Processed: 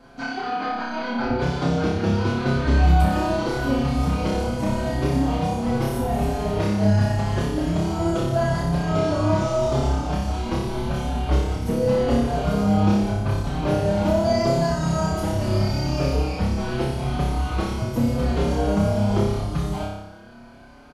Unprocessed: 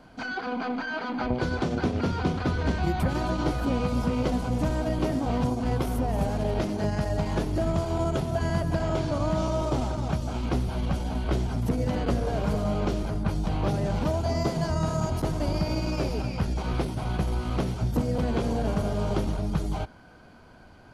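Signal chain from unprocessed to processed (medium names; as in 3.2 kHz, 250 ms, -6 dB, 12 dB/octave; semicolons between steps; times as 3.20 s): flutter echo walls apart 5.1 m, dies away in 0.88 s; endless flanger 5.5 ms +0.83 Hz; trim +4 dB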